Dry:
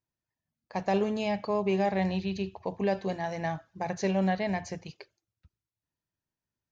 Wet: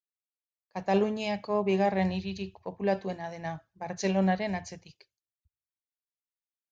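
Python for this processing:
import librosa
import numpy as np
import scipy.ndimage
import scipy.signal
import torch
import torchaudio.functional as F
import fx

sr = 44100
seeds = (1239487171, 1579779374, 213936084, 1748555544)

y = fx.band_widen(x, sr, depth_pct=100)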